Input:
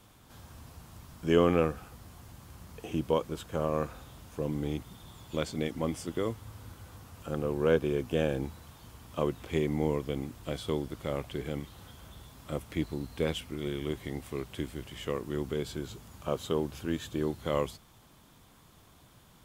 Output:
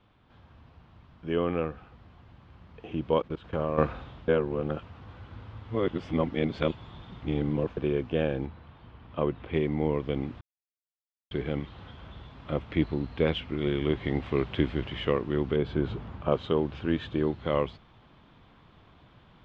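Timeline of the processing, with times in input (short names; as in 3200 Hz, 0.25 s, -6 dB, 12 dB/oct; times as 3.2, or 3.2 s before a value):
3.21–3.78 level quantiser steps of 19 dB
4.28–7.77 reverse
8.46–9.54 air absorption 160 m
10.41–11.31 mute
15.56–16.32 high shelf 2500 Hz -10.5 dB
whole clip: LPF 3400 Hz 24 dB/oct; vocal rider 0.5 s; gain +4 dB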